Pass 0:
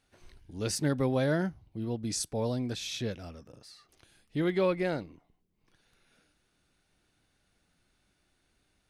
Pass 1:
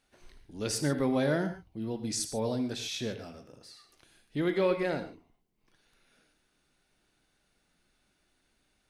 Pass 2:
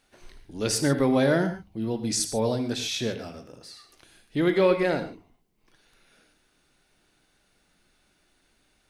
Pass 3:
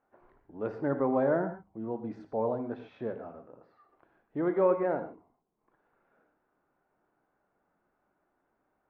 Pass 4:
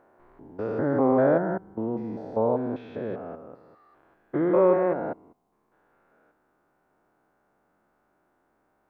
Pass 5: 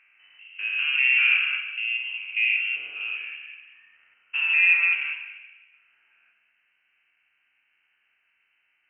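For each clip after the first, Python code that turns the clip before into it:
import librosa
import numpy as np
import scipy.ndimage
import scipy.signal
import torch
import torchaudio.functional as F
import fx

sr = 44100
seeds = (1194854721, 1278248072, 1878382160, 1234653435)

y1 = fx.peak_eq(x, sr, hz=86.0, db=-7.5, octaves=1.2)
y1 = fx.rev_gated(y1, sr, seeds[0], gate_ms=160, shape='flat', drr_db=7.5)
y2 = fx.hum_notches(y1, sr, base_hz=50, count=5)
y2 = F.gain(torch.from_numpy(y2), 6.5).numpy()
y3 = scipy.signal.sosfilt(scipy.signal.butter(4, 1100.0, 'lowpass', fs=sr, output='sos'), y2)
y3 = fx.tilt_eq(y3, sr, slope=4.0)
y4 = fx.spec_steps(y3, sr, hold_ms=200)
y4 = F.gain(torch.from_numpy(y4), 8.0).numpy()
y5 = fx.rev_plate(y4, sr, seeds[1], rt60_s=1.3, hf_ratio=0.9, predelay_ms=0, drr_db=3.0)
y5 = fx.freq_invert(y5, sr, carrier_hz=3000)
y5 = F.gain(torch.from_numpy(y5), -1.5).numpy()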